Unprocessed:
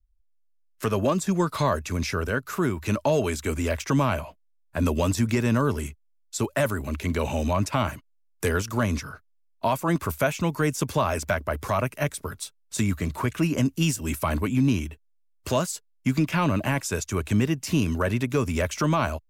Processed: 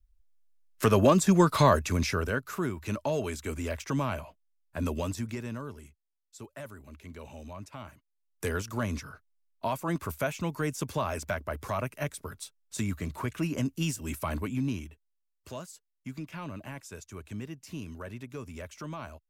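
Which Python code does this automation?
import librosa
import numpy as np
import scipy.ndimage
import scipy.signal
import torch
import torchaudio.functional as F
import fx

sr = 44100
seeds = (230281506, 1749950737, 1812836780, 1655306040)

y = fx.gain(x, sr, db=fx.line((1.69, 2.5), (2.74, -7.5), (4.94, -7.5), (5.83, -19.0), (7.94, -19.0), (8.44, -7.0), (14.39, -7.0), (15.52, -16.5)))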